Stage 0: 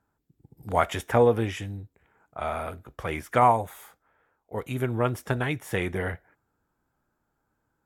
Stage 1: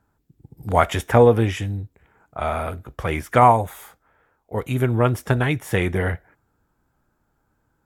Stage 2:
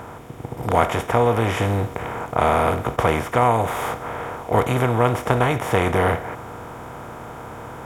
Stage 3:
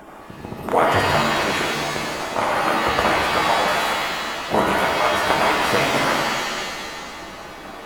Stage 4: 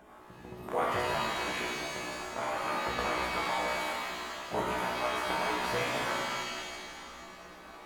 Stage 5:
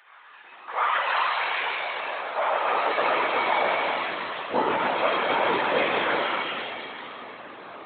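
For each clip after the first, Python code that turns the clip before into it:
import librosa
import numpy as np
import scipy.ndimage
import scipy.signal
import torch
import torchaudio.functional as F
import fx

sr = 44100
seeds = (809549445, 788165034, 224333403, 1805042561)

y1 = fx.low_shelf(x, sr, hz=140.0, db=6.0)
y1 = y1 * 10.0 ** (5.5 / 20.0)
y2 = fx.bin_compress(y1, sr, power=0.4)
y2 = fx.rider(y2, sr, range_db=4, speed_s=0.5)
y2 = y2 * 10.0 ** (-4.5 / 20.0)
y3 = fx.hpss_only(y2, sr, part='percussive')
y3 = fx.rev_shimmer(y3, sr, seeds[0], rt60_s=1.8, semitones=7, shimmer_db=-2, drr_db=-1.0)
y4 = fx.comb_fb(y3, sr, f0_hz=61.0, decay_s=0.55, harmonics='all', damping=0.0, mix_pct=90)
y4 = y4 * 10.0 ** (-4.0 / 20.0)
y5 = fx.lpc_vocoder(y4, sr, seeds[1], excitation='whisper', order=16)
y5 = fx.filter_sweep_highpass(y5, sr, from_hz=1700.0, to_hz=280.0, start_s=0.04, end_s=3.99, q=1.2)
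y5 = y5 * 10.0 ** (8.0 / 20.0)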